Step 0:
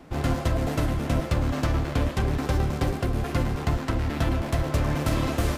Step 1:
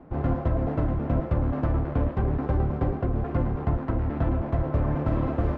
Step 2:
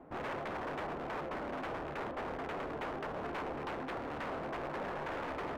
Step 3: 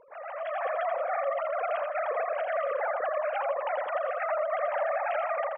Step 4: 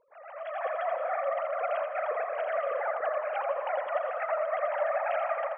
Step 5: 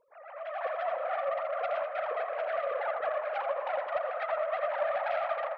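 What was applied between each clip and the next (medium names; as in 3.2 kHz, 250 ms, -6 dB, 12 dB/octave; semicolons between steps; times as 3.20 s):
low-pass 1.1 kHz 12 dB/octave
gain riding 0.5 s; wavefolder -29 dBFS; tone controls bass -11 dB, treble -5 dB; trim -3 dB
formants replaced by sine waves; level rider gain up to 11 dB; on a send: feedback delay 83 ms, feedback 26%, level -5.5 dB; on the sum: trim -2 dB
on a send at -8.5 dB: reverberation RT60 2.9 s, pre-delay 120 ms; on the sum: upward expansion 1.5:1, over -50 dBFS
self-modulated delay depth 0.089 ms; flange 1.5 Hz, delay 1.8 ms, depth 2.3 ms, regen -83%; trim +3 dB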